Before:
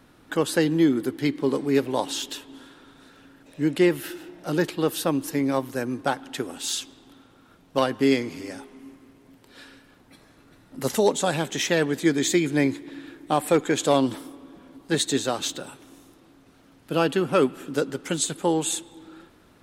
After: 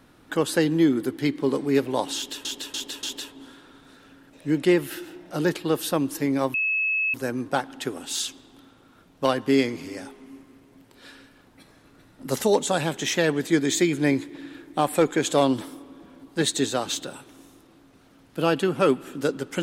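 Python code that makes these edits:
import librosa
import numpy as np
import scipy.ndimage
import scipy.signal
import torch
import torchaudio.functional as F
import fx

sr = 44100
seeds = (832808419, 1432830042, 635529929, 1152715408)

y = fx.edit(x, sr, fx.repeat(start_s=2.16, length_s=0.29, count=4),
    fx.insert_tone(at_s=5.67, length_s=0.6, hz=2590.0, db=-21.0), tone=tone)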